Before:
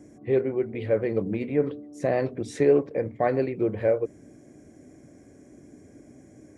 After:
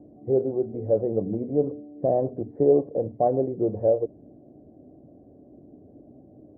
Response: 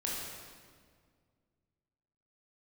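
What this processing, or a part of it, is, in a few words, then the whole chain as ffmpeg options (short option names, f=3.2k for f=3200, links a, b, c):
under water: -af "lowpass=f=730:w=0.5412,lowpass=f=730:w=1.3066,equalizer=f=710:t=o:w=0.55:g=6"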